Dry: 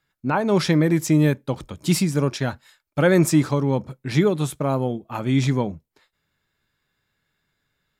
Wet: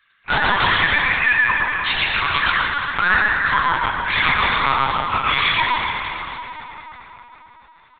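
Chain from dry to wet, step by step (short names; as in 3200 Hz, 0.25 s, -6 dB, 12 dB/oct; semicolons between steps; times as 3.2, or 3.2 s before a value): 1.02–1.73 sine-wave speech; 3.02–3.47 elliptic low-pass 1800 Hz, stop band 40 dB; reverb removal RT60 1.1 s; inverse Chebyshev high-pass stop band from 240 Hz, stop band 70 dB; sine folder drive 12 dB, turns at -13 dBFS; loudspeakers at several distances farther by 42 m -1 dB, 98 m -10 dB; plate-style reverb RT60 4.5 s, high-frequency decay 0.65×, pre-delay 0 ms, DRR -0.5 dB; LPC vocoder at 8 kHz pitch kept; 4.42–4.98 three-band squash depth 70%; gain -1 dB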